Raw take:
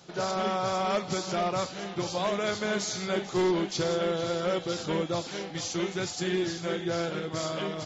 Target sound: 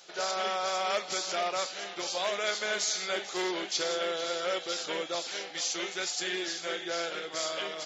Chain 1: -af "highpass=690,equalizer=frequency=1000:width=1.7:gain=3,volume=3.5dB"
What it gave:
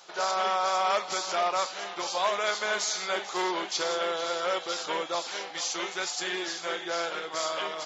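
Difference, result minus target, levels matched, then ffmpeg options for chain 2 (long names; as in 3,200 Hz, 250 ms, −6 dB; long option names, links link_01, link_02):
1,000 Hz band +4.0 dB
-af "highpass=690,equalizer=frequency=1000:width=1.7:gain=-7,volume=3.5dB"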